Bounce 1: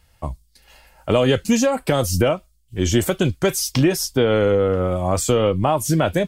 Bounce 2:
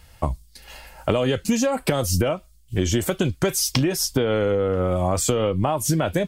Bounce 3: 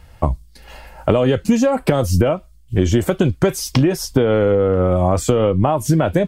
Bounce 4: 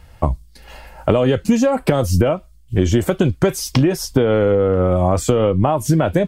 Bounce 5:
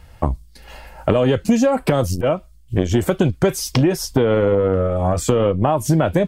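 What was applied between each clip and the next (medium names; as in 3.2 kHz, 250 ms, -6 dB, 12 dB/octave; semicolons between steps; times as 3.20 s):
compression 6:1, threshold -26 dBFS, peak gain reduction 13.5 dB; trim +7.5 dB
treble shelf 2.3 kHz -11 dB; trim +6.5 dB
no audible change
transformer saturation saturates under 280 Hz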